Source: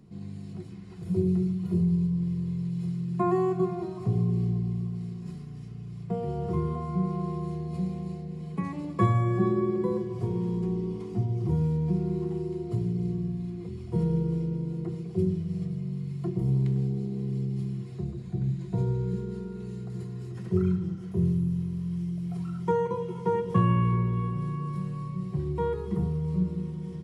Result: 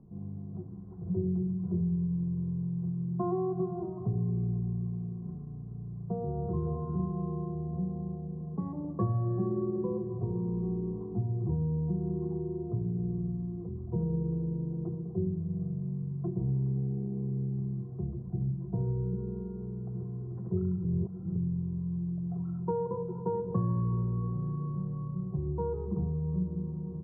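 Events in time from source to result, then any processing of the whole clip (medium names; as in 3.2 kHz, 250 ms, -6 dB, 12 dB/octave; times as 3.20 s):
6.21–6.65 s: echo throw 450 ms, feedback 25%, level -6 dB
20.85–21.36 s: reverse
whole clip: inverse Chebyshev low-pass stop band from 2.6 kHz, stop band 50 dB; bass shelf 69 Hz +7.5 dB; compression 2:1, threshold -27 dBFS; trim -2.5 dB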